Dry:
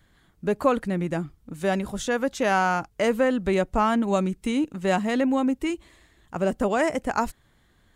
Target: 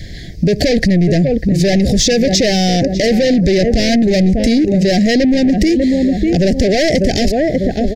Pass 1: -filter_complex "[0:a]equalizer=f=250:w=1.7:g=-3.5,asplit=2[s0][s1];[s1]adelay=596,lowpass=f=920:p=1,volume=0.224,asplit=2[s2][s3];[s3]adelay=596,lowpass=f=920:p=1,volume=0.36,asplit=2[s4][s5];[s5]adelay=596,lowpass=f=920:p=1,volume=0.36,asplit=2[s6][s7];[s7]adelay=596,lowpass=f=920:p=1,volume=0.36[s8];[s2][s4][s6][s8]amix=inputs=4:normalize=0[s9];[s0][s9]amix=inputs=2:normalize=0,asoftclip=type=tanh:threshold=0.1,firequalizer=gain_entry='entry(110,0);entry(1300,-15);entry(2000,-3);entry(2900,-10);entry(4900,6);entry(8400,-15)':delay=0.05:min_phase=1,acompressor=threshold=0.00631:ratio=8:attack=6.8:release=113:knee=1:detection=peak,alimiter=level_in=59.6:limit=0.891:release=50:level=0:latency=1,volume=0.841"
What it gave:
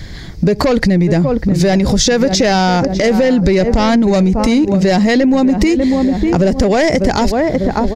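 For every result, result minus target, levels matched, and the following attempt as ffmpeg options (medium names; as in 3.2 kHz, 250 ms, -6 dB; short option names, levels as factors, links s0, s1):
1 kHz band +6.5 dB; saturation: distortion -8 dB
-filter_complex "[0:a]equalizer=f=250:w=1.7:g=-3.5,asplit=2[s0][s1];[s1]adelay=596,lowpass=f=920:p=1,volume=0.224,asplit=2[s2][s3];[s3]adelay=596,lowpass=f=920:p=1,volume=0.36,asplit=2[s4][s5];[s5]adelay=596,lowpass=f=920:p=1,volume=0.36,asplit=2[s6][s7];[s7]adelay=596,lowpass=f=920:p=1,volume=0.36[s8];[s2][s4][s6][s8]amix=inputs=4:normalize=0[s9];[s0][s9]amix=inputs=2:normalize=0,asoftclip=type=tanh:threshold=0.1,firequalizer=gain_entry='entry(110,0);entry(1300,-15);entry(2000,-3);entry(2900,-10);entry(4900,6);entry(8400,-15)':delay=0.05:min_phase=1,acompressor=threshold=0.00631:ratio=8:attack=6.8:release=113:knee=1:detection=peak,asuperstop=centerf=1100:order=12:qfactor=1.2,alimiter=level_in=59.6:limit=0.891:release=50:level=0:latency=1,volume=0.841"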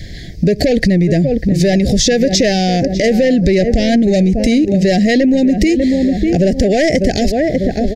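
saturation: distortion -8 dB
-filter_complex "[0:a]equalizer=f=250:w=1.7:g=-3.5,asplit=2[s0][s1];[s1]adelay=596,lowpass=f=920:p=1,volume=0.224,asplit=2[s2][s3];[s3]adelay=596,lowpass=f=920:p=1,volume=0.36,asplit=2[s4][s5];[s5]adelay=596,lowpass=f=920:p=1,volume=0.36,asplit=2[s6][s7];[s7]adelay=596,lowpass=f=920:p=1,volume=0.36[s8];[s2][s4][s6][s8]amix=inputs=4:normalize=0[s9];[s0][s9]amix=inputs=2:normalize=0,asoftclip=type=tanh:threshold=0.0299,firequalizer=gain_entry='entry(110,0);entry(1300,-15);entry(2000,-3);entry(2900,-10);entry(4900,6);entry(8400,-15)':delay=0.05:min_phase=1,acompressor=threshold=0.00631:ratio=8:attack=6.8:release=113:knee=1:detection=peak,asuperstop=centerf=1100:order=12:qfactor=1.2,alimiter=level_in=59.6:limit=0.891:release=50:level=0:latency=1,volume=0.841"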